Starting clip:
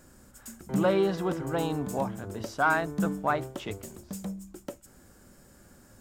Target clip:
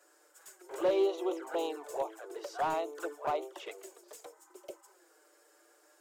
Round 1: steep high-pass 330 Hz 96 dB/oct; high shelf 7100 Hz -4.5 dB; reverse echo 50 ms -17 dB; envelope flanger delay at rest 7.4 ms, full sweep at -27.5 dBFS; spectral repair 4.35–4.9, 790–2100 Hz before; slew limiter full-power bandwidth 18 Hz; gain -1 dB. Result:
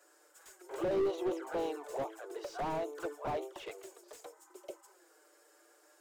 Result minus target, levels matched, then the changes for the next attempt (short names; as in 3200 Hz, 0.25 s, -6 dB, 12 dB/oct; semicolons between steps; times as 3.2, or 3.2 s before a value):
slew limiter: distortion +14 dB
change: slew limiter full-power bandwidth 46.5 Hz